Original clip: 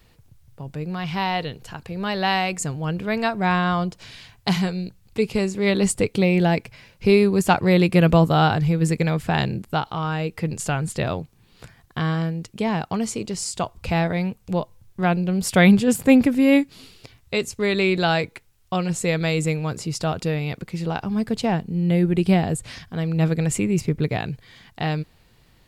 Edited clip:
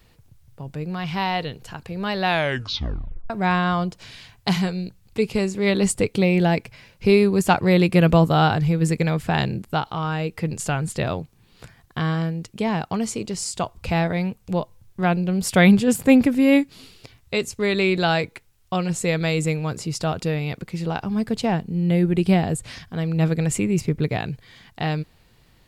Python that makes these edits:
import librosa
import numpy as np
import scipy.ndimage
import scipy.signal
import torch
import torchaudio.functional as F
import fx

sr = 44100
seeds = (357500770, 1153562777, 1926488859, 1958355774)

y = fx.edit(x, sr, fx.tape_stop(start_s=2.22, length_s=1.08), tone=tone)